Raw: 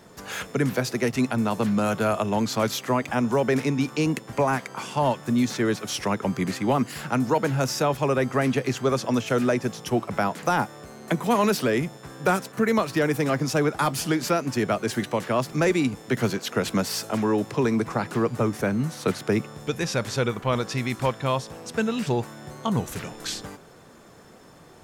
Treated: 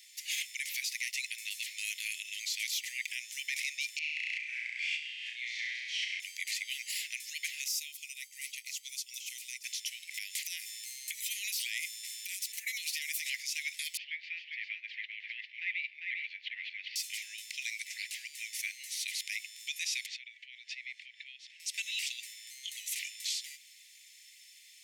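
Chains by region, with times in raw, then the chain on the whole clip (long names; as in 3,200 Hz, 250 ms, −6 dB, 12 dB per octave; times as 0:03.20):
0:03.99–0:06.20: low-pass filter 1,800 Hz + flutter between parallel walls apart 5.7 metres, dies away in 1.3 s + background raised ahead of every attack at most 26 dB per second
0:07.68–0:09.64: first-order pre-emphasis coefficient 0.8 + notch filter 1,700 Hz, Q 6 + expander for the loud parts, over −46 dBFS
0:10.14–0:13.26: spectral tilt +2.5 dB per octave + downward compressor, threshold −28 dBFS
0:13.97–0:16.96: Bessel low-pass filter 1,800 Hz, order 6 + single-tap delay 399 ms −4 dB
0:20.06–0:21.60: low-pass filter 2,600 Hz + downward compressor 4 to 1, threshold −34 dBFS
whole clip: Butterworth high-pass 2,000 Hz 96 dB per octave; brickwall limiter −28 dBFS; level +3.5 dB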